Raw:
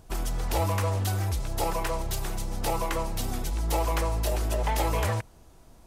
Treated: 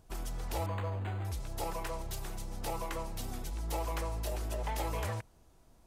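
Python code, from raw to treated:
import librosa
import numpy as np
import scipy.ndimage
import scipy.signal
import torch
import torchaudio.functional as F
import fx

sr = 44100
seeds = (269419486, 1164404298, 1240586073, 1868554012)

y = fx.resample_linear(x, sr, factor=8, at=(0.66, 1.25))
y = F.gain(torch.from_numpy(y), -9.0).numpy()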